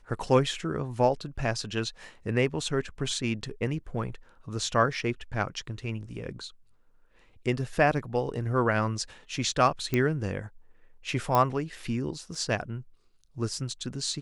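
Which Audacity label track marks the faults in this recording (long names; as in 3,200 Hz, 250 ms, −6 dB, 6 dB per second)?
9.940000	9.940000	click −13 dBFS
11.350000	11.350000	click −11 dBFS
12.350000	12.350000	drop-out 3.5 ms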